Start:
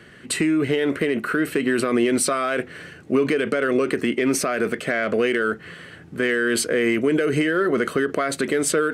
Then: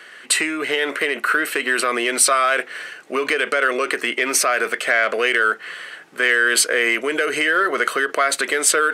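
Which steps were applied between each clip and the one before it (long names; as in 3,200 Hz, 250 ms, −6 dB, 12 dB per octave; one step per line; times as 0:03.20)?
high-pass filter 760 Hz 12 dB per octave
level +8 dB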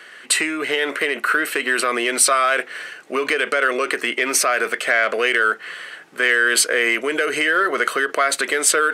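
no processing that can be heard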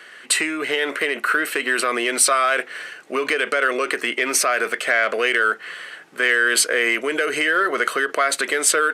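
downsampling to 32,000 Hz
level −1 dB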